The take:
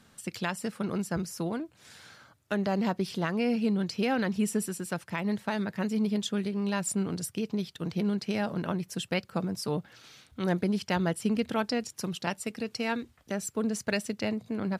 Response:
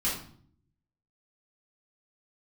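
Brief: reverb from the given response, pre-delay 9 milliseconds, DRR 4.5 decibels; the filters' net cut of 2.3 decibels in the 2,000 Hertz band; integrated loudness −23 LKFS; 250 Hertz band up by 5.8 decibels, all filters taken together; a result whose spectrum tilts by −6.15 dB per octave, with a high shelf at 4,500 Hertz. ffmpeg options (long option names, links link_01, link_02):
-filter_complex "[0:a]equalizer=frequency=250:width_type=o:gain=7.5,equalizer=frequency=2000:width_type=o:gain=-4,highshelf=frequency=4500:gain=5,asplit=2[link_01][link_02];[1:a]atrim=start_sample=2205,adelay=9[link_03];[link_02][link_03]afir=irnorm=-1:irlink=0,volume=-12dB[link_04];[link_01][link_04]amix=inputs=2:normalize=0"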